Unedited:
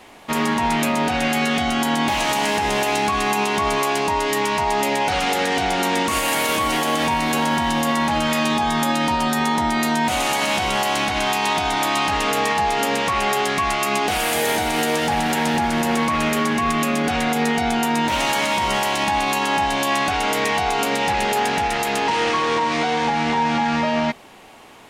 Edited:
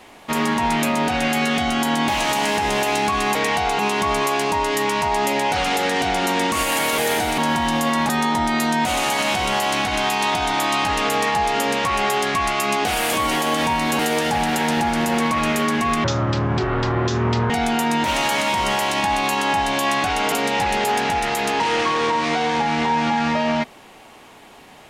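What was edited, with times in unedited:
0:06.54–0:07.40: swap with 0:14.36–0:14.76
0:08.11–0:09.32: remove
0:16.81–0:17.54: play speed 50%
0:20.36–0:20.80: move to 0:03.35

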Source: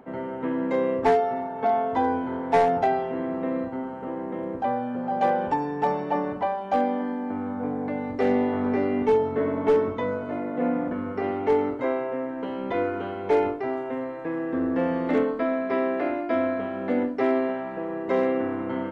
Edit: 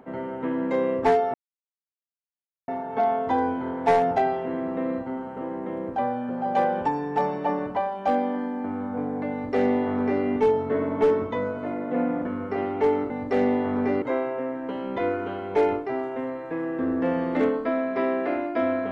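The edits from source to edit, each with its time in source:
0:01.34: splice in silence 1.34 s
0:07.98–0:08.90: duplicate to 0:11.76

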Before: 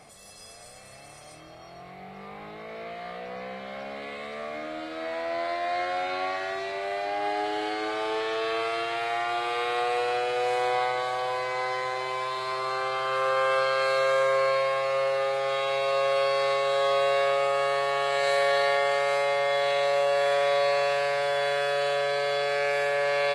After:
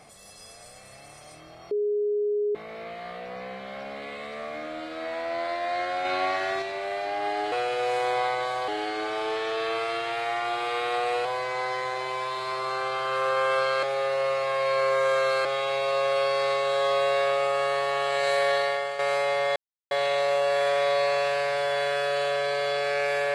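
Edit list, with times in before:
0:01.71–0:02.55: beep over 415 Hz −22.5 dBFS
0:06.05–0:06.62: clip gain +3.5 dB
0:10.09–0:11.25: move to 0:07.52
0:13.83–0:15.45: reverse
0:18.51–0:18.99: fade out, to −9 dB
0:19.56: splice in silence 0.35 s

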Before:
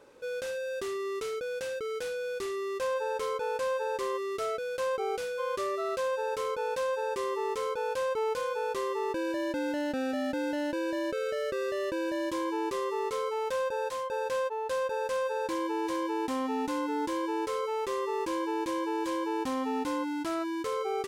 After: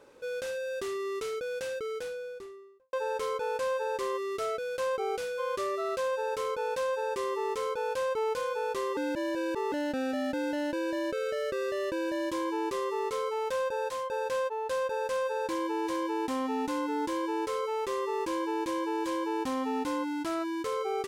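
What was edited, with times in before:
0:01.71–0:02.93: fade out and dull
0:08.97–0:09.72: reverse

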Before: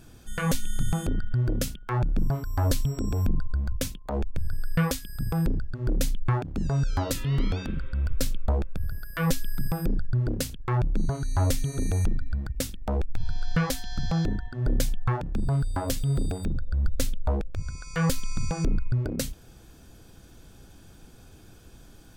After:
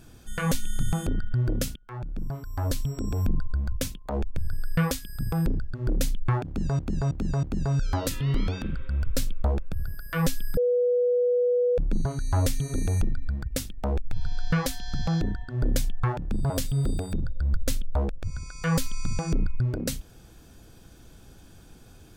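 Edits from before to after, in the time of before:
0:01.76–0:03.35: fade in, from −14.5 dB
0:06.47–0:06.79: repeat, 4 plays
0:09.61–0:10.82: beep over 490 Hz −19.5 dBFS
0:15.54–0:15.82: remove

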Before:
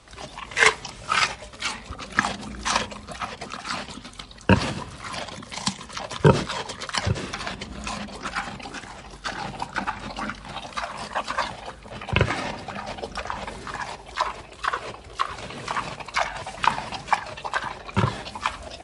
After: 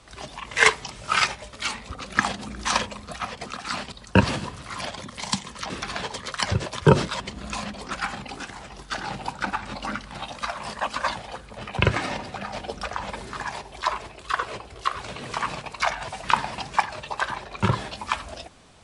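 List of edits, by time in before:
0:03.92–0:04.26: remove
0:06.04–0:06.58: swap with 0:07.21–0:07.54

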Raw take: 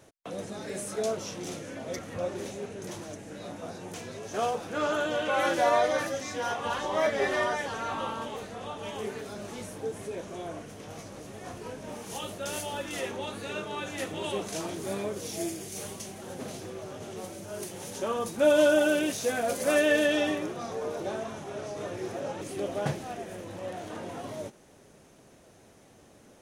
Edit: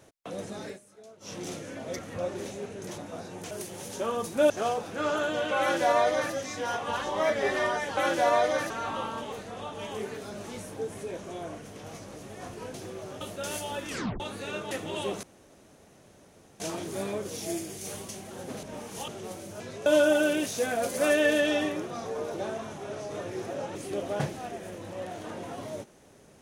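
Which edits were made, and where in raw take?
0:00.66–0:01.33: duck −21 dB, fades 0.13 s
0:02.98–0:03.48: remove
0:04.01–0:04.27: swap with 0:17.53–0:18.52
0:05.37–0:06.10: duplicate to 0:07.74
0:11.78–0:12.23: swap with 0:16.54–0:17.01
0:12.91: tape stop 0.31 s
0:13.73–0:13.99: remove
0:14.51: splice in room tone 1.37 s

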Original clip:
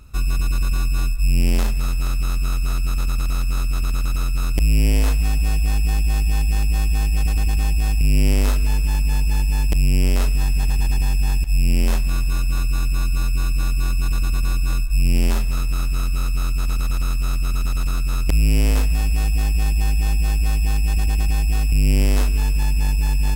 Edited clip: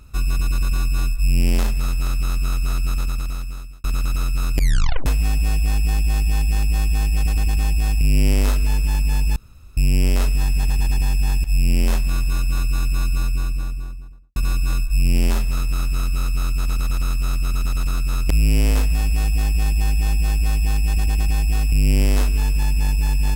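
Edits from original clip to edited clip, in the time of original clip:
0:02.92–0:03.84: fade out
0:04.56: tape stop 0.50 s
0:09.36–0:09.77: fill with room tone
0:13.06–0:14.36: fade out and dull

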